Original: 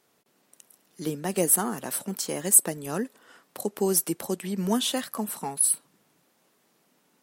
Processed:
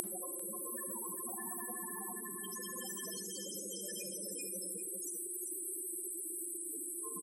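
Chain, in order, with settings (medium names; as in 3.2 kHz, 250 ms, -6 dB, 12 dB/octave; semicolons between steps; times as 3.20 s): high-pass 220 Hz 6 dB/octave; hum notches 60/120/180/240/300/360 Hz; feedback comb 350 Hz, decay 0.16 s, harmonics odd, mix 90%; Paulstretch 5.4×, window 1.00 s, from 1.48 s; in parallel at -3 dB: bit crusher 6-bit; on the sum: loudest bins only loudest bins 16; delay 395 ms -21.5 dB; on a send at -18 dB: reverberation RT60 0.50 s, pre-delay 33 ms; on the sum: spectrum-flattening compressor 10:1; trim +5 dB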